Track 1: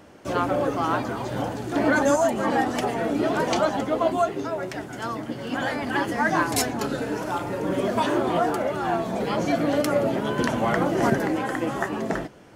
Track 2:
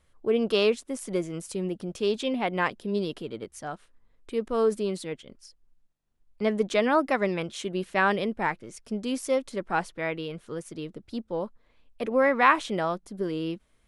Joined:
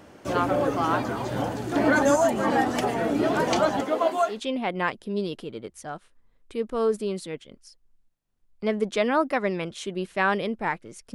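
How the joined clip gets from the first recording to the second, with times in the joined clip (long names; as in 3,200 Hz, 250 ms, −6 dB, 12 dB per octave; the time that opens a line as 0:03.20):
track 1
0:03.81–0:04.41: high-pass filter 250 Hz → 710 Hz
0:04.34: continue with track 2 from 0:02.12, crossfade 0.14 s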